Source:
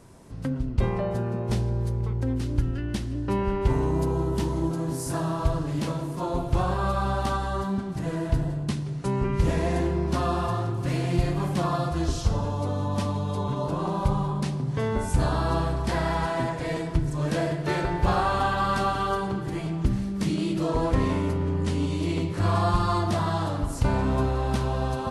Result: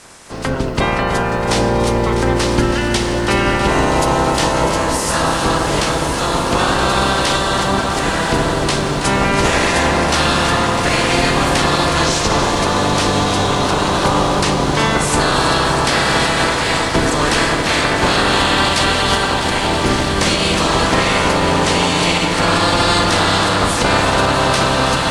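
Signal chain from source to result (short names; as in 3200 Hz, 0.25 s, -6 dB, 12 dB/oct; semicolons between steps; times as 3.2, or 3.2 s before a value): spectral limiter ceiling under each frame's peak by 24 dB; LPF 10000 Hz 24 dB/oct; on a send: diffused feedback echo 1.144 s, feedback 75%, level -11 dB; on the sum: maximiser +14 dB; lo-fi delay 0.325 s, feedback 80%, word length 7-bit, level -10 dB; gain -4 dB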